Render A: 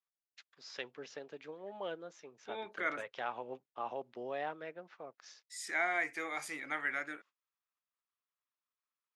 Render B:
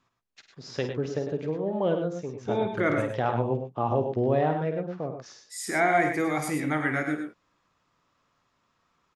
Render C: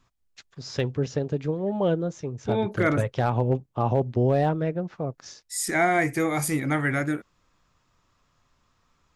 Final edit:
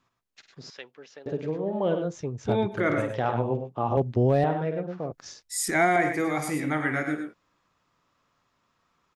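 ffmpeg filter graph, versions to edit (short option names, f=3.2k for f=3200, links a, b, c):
-filter_complex "[2:a]asplit=3[a][b][c];[1:a]asplit=5[d][e][f][g][h];[d]atrim=end=0.702[i];[0:a]atrim=start=0.698:end=1.262[j];[e]atrim=start=1.258:end=2.16[k];[a]atrim=start=2:end=2.82[l];[f]atrim=start=2.66:end=3.972[m];[b]atrim=start=3.968:end=4.442[n];[g]atrim=start=4.438:end=5.122[o];[c]atrim=start=5.118:end=5.962[p];[h]atrim=start=5.958[q];[i][j]acrossfade=d=0.004:c1=hsin:c2=hsin[r];[r][k]acrossfade=d=0.004:c1=hsin:c2=hsin[s];[s][l]acrossfade=d=0.16:c1=tri:c2=tri[t];[t][m]acrossfade=d=0.16:c1=tri:c2=tri[u];[u][n]acrossfade=d=0.004:c1=hsin:c2=hsin[v];[v][o]acrossfade=d=0.004:c1=hsin:c2=hsin[w];[w][p]acrossfade=d=0.004:c1=hsin:c2=hsin[x];[x][q]acrossfade=d=0.004:c1=hsin:c2=hsin"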